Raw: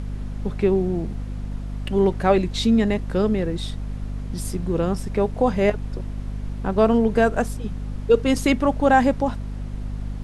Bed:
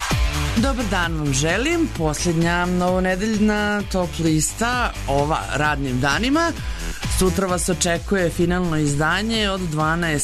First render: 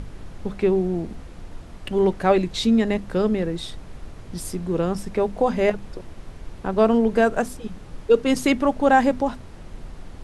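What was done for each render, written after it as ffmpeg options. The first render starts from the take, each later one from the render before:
-af "bandreject=f=50:t=h:w=6,bandreject=f=100:t=h:w=6,bandreject=f=150:t=h:w=6,bandreject=f=200:t=h:w=6,bandreject=f=250:t=h:w=6"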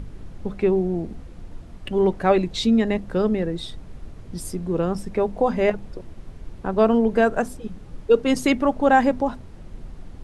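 -af "afftdn=nr=6:nf=-41"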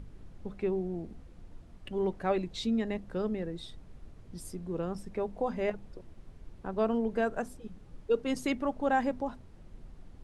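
-af "volume=0.266"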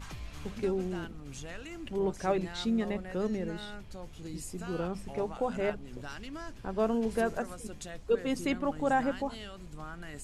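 -filter_complex "[1:a]volume=0.0596[s0];[0:a][s0]amix=inputs=2:normalize=0"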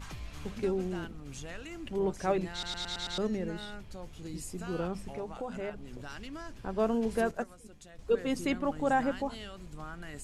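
-filter_complex "[0:a]asettb=1/sr,asplit=3[s0][s1][s2];[s0]atrim=end=5.094[s3];[s1]atrim=start=5.09:end=6.6,asetpts=PTS-STARTPTS,afade=t=in:d=0.004:c=qsin,afade=t=out:st=1.506:d=0.004:c=qsin,acompressor=threshold=0.0126:ratio=2:attack=3.2:release=140:knee=1:detection=peak[s4];[s2]atrim=start=6.596[s5];[s3][s4]acrossfade=d=0.004:c1=hsin:c2=qsin[s6];[s6][s5]acrossfade=d=0.004:c1=qsin:c2=hsin,asettb=1/sr,asplit=3[s7][s8][s9];[s7]atrim=end=7.314[s10];[s8]atrim=start=7.31:end=7.99,asetpts=PTS-STARTPTS,afade=t=in:d=0.004:c=qsin,afade=t=out:st=0.676:d=0.004:c=qsin,agate=range=0.316:threshold=0.02:ratio=16:release=100:detection=peak[s11];[s9]atrim=start=7.986[s12];[s10][s11]acrossfade=d=0.004:c1=hsin:c2=qsin[s13];[s13][s12]acrossfade=d=0.004:c1=qsin:c2=hsin,asplit=7[s14][s15][s16][s17][s18][s19][s20];[s14]atrim=end=2.632[s21];[s15]atrim=start=2.518:end=2.632[s22];[s16]atrim=start=2.518:end=2.632[s23];[s17]atrim=start=2.518:end=2.632[s24];[s18]atrim=start=2.518:end=2.632[s25];[s19]atrim=start=2.518:end=2.632[s26];[s20]atrim=start=3.178[s27];[s21][s22]acrossfade=d=0.004:c1=hsin:c2=hsin[s28];[s28][s23]acrossfade=d=0.004:c1=hsin:c2=hsin[s29];[s29][s24]acrossfade=d=0.004:c1=hsin:c2=hsin[s30];[s30][s25]acrossfade=d=0.004:c1=hsin:c2=hsin[s31];[s31][s26]acrossfade=d=0.004:c1=hsin:c2=hsin[s32];[s32][s27]acrossfade=d=0.004:c1=hsin:c2=hsin"

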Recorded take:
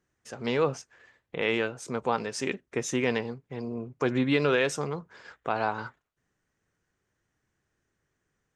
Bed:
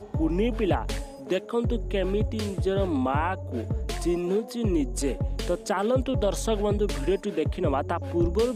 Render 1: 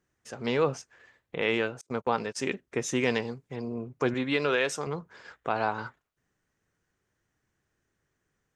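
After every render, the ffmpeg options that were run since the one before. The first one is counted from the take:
-filter_complex "[0:a]asettb=1/sr,asplit=3[s0][s1][s2];[s0]atrim=end=1.814[s3];[s1]atrim=start=1.81:end=2.41,asetpts=PTS-STARTPTS,afade=t=in:d=0.004:c=qsin,afade=t=out:st=0.596:d=0.004:c=qsin,agate=range=0.0251:threshold=0.0141:ratio=16:release=100:detection=peak[s4];[s2]atrim=start=2.406[s5];[s3][s4]acrossfade=d=0.004:c1=hsin:c2=qsin[s6];[s6][s5]acrossfade=d=0.004:c1=qsin:c2=hsin,asettb=1/sr,asplit=3[s7][s8][s9];[s7]atrim=end=2.964[s10];[s8]atrim=start=2.96:end=3.56,asetpts=PTS-STARTPTS,afade=t=in:d=0.004:c=qsin,afade=t=out:st=0.596:d=0.004:c=qsin,equalizer=f=7600:w=0.72:g=8[s11];[s9]atrim=start=3.556[s12];[s10][s11]acrossfade=d=0.004:c1=hsin:c2=qsin[s13];[s13][s12]acrossfade=d=0.004:c1=qsin:c2=hsin,asettb=1/sr,asplit=3[s14][s15][s16];[s14]atrim=end=4.144[s17];[s15]atrim=start=4.14:end=4.87,asetpts=PTS-STARTPTS,afade=t=in:d=0.004:c=qsin,afade=t=out:st=0.726:d=0.004:c=qsin,lowshelf=f=270:g=-9.5[s18];[s16]atrim=start=4.866[s19];[s17][s18]acrossfade=d=0.004:c1=hsin:c2=qsin[s20];[s20][s19]acrossfade=d=0.004:c1=qsin:c2=hsin"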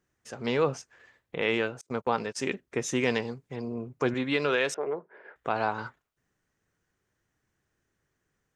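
-filter_complex "[0:a]asettb=1/sr,asplit=3[s0][s1][s2];[s0]atrim=end=4.744[s3];[s1]atrim=start=4.74:end=5.36,asetpts=PTS-STARTPTS,afade=t=in:d=0.004:c=qsin,afade=t=out:st=0.616:d=0.004:c=qsin,highpass=360,equalizer=f=390:t=q:w=4:g=10,equalizer=f=610:t=q:w=4:g=5,equalizer=f=1200:t=q:w=4:g=-8,lowpass=f=2100:w=0.5412,lowpass=f=2100:w=1.3066[s4];[s2]atrim=start=5.356[s5];[s3][s4]acrossfade=d=0.004:c1=hsin:c2=qsin[s6];[s6][s5]acrossfade=d=0.004:c1=qsin:c2=hsin"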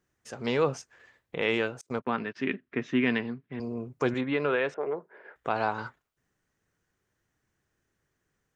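-filter_complex "[0:a]asettb=1/sr,asplit=3[s0][s1][s2];[s0]atrim=end=1.994[s3];[s1]atrim=start=1.99:end=3.6,asetpts=PTS-STARTPTS,afade=t=in:d=0.004:c=qsin,afade=t=out:st=1.606:d=0.004:c=qsin,highpass=110,equalizer=f=250:t=q:w=4:g=6,equalizer=f=510:t=q:w=4:g=-9,equalizer=f=840:t=q:w=4:g=-7,equalizer=f=1700:t=q:w=4:g=4,lowpass=f=3300:w=0.5412,lowpass=f=3300:w=1.3066[s4];[s2]atrim=start=3.596[s5];[s3][s4]acrossfade=d=0.004:c1=hsin:c2=qsin[s6];[s6][s5]acrossfade=d=0.004:c1=qsin:c2=hsin,asplit=3[s7][s8][s9];[s7]afade=t=out:st=4.2:d=0.02[s10];[s8]lowpass=2100,afade=t=in:st=4.2:d=0.02,afade=t=out:st=4.78:d=0.02[s11];[s9]afade=t=in:st=4.78:d=0.02[s12];[s10][s11][s12]amix=inputs=3:normalize=0"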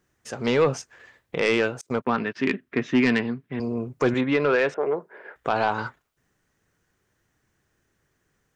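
-af "aeval=exprs='0.251*sin(PI/2*1.41*val(0)/0.251)':c=same"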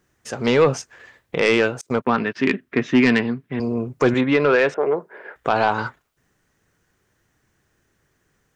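-af "volume=1.68"

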